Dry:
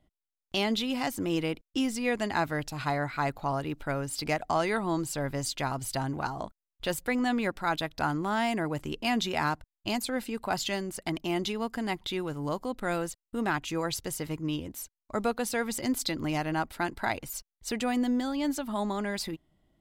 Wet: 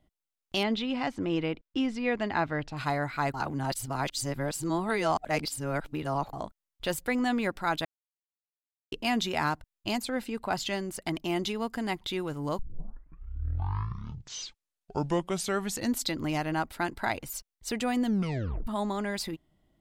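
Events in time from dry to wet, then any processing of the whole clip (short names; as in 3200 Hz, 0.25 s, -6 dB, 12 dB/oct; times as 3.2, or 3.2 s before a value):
0.63–2.77 LPF 3400 Hz
3.34–6.33 reverse
7.85–8.92 mute
9.98–10.83 high shelf 6800 Hz -6 dB
12.59 tape start 3.50 s
18.04 tape stop 0.63 s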